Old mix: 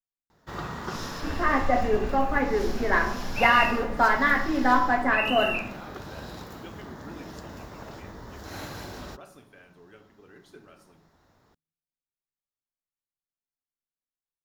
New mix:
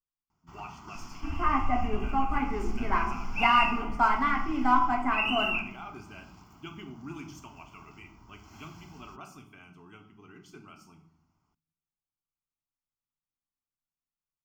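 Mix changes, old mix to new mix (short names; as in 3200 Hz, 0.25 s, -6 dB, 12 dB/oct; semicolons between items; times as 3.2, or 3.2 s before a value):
speech +6.5 dB; first sound -11.0 dB; master: add fixed phaser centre 2600 Hz, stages 8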